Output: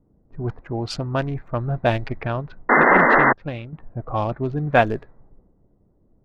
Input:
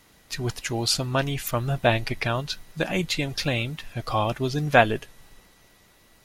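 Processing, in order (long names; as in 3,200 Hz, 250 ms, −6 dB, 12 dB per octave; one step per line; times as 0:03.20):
adaptive Wiener filter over 15 samples
low-pass that shuts in the quiet parts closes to 380 Hz, open at −17 dBFS
high-shelf EQ 2,600 Hz −9 dB
0:02.69–0:03.33: sound drawn into the spectrogram noise 210–2,100 Hz −16 dBFS
0:03.02–0:03.73: expander for the loud parts 1.5 to 1, over −39 dBFS
level +2 dB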